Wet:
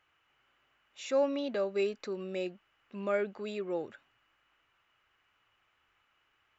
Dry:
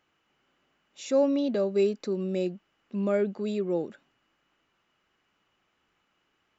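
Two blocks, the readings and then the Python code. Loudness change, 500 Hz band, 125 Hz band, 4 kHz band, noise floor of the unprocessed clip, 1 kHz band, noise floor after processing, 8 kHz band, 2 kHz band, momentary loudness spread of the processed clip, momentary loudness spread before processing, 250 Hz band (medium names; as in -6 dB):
-6.0 dB, -5.5 dB, -12.0 dB, -1.5 dB, -74 dBFS, -0.5 dB, -74 dBFS, no reading, +2.0 dB, 11 LU, 9 LU, -10.0 dB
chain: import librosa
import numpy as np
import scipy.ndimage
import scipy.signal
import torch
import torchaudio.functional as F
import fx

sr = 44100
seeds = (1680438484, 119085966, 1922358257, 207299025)

y = fx.curve_eq(x, sr, hz=(120.0, 170.0, 1300.0, 2600.0, 4900.0), db=(0, -13, 2, 2, -5))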